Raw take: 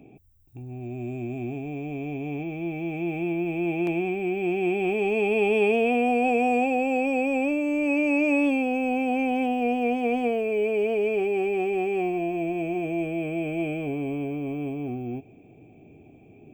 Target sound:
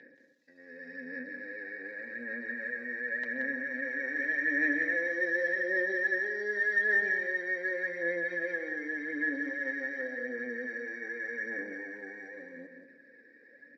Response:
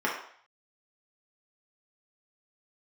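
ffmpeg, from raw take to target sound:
-filter_complex "[0:a]acompressor=threshold=-36dB:ratio=2,aecho=1:1:5.4:0.47,asetrate=31183,aresample=44100,atempo=1.41421,highpass=frequency=380:width=0.5412,highpass=frequency=380:width=1.3066,equalizer=frequency=390:width_type=q:width=4:gain=-7,equalizer=frequency=560:width_type=q:width=4:gain=-3,equalizer=frequency=810:width_type=q:width=4:gain=-3,equalizer=frequency=1200:width_type=q:width=4:gain=-8,equalizer=frequency=2100:width_type=q:width=4:gain=4,equalizer=frequency=3800:width_type=q:width=4:gain=9,lowpass=frequency=6100:width=0.5412,lowpass=frequency=6100:width=1.3066,aphaser=in_gain=1:out_gain=1:delay=2.7:decay=0.44:speed=0.72:type=sinusoidal,equalizer=frequency=1700:width=1.6:gain=5,asplit=2[link_01][link_02];[link_02]adelay=149,lowpass=frequency=1900:poles=1,volume=-12dB,asplit=2[link_03][link_04];[link_04]adelay=149,lowpass=frequency=1900:poles=1,volume=0.45,asplit=2[link_05][link_06];[link_06]adelay=149,lowpass=frequency=1900:poles=1,volume=0.45,asplit=2[link_07][link_08];[link_08]adelay=149,lowpass=frequency=1900:poles=1,volume=0.45,asplit=2[link_09][link_10];[link_10]adelay=149,lowpass=frequency=1900:poles=1,volume=0.45[link_11];[link_03][link_05][link_07][link_09][link_11]amix=inputs=5:normalize=0[link_12];[link_01][link_12]amix=inputs=2:normalize=0,atempo=1.2,aecho=1:1:178:0.447,asplit=2[link_13][link_14];[1:a]atrim=start_sample=2205,asetrate=57330,aresample=44100[link_15];[link_14][link_15]afir=irnorm=-1:irlink=0,volume=-23.5dB[link_16];[link_13][link_16]amix=inputs=2:normalize=0"

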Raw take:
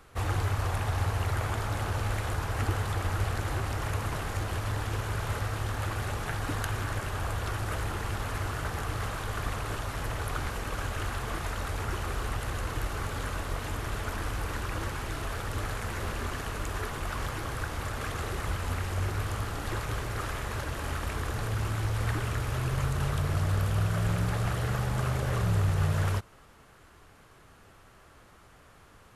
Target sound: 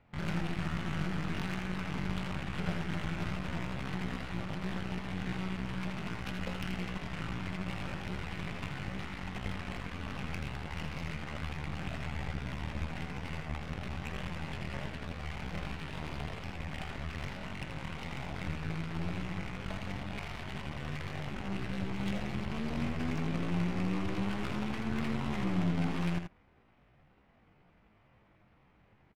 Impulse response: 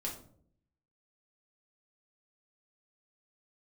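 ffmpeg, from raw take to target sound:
-filter_complex "[0:a]asetrate=78577,aresample=44100,atempo=0.561231,aeval=exprs='0.188*(cos(1*acos(clip(val(0)/0.188,-1,1)))-cos(1*PI/2))+0.0188*(cos(3*acos(clip(val(0)/0.188,-1,1)))-cos(3*PI/2))+0.0168*(cos(8*acos(clip(val(0)/0.188,-1,1)))-cos(8*PI/2))':channel_layout=same,adynamicsmooth=sensitivity=6.5:basefreq=1800,asplit=2[link_01][link_02];[link_02]aecho=0:1:81:0.447[link_03];[link_01][link_03]amix=inputs=2:normalize=0,volume=-4.5dB"

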